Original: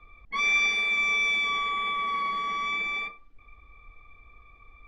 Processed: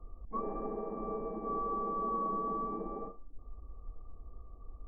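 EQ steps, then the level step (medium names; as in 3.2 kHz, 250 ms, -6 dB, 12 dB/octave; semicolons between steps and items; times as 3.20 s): peaking EQ 120 Hz -7 dB 0.71 oct; dynamic bell 410 Hz, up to +5 dB, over -46 dBFS, Q 0.78; Gaussian low-pass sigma 11 samples; +7.0 dB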